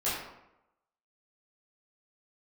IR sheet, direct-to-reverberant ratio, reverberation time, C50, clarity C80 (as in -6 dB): -11.0 dB, 0.90 s, 1.0 dB, 4.0 dB